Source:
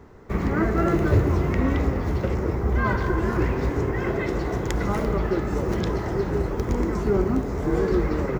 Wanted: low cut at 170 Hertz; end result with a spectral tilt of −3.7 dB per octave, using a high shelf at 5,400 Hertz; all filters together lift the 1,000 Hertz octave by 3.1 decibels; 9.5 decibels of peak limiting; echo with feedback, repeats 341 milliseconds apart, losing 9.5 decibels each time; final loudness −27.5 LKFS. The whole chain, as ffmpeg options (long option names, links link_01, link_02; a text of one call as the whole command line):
ffmpeg -i in.wav -af "highpass=170,equalizer=frequency=1000:width_type=o:gain=4,highshelf=frequency=5400:gain=-4.5,alimiter=limit=-18.5dB:level=0:latency=1,aecho=1:1:341|682|1023|1364:0.335|0.111|0.0365|0.012" out.wav